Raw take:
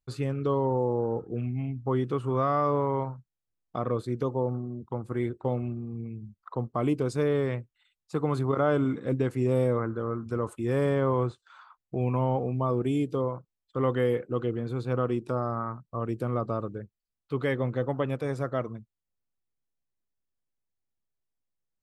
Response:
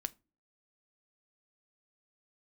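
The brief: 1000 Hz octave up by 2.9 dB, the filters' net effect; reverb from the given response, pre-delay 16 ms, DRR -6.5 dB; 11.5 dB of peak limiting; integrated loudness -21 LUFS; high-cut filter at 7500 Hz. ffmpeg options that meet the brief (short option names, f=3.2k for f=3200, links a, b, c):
-filter_complex "[0:a]lowpass=7.5k,equalizer=f=1k:t=o:g=3.5,alimiter=limit=-23.5dB:level=0:latency=1,asplit=2[a][b];[1:a]atrim=start_sample=2205,adelay=16[c];[b][c]afir=irnorm=-1:irlink=0,volume=7.5dB[d];[a][d]amix=inputs=2:normalize=0,volume=5dB"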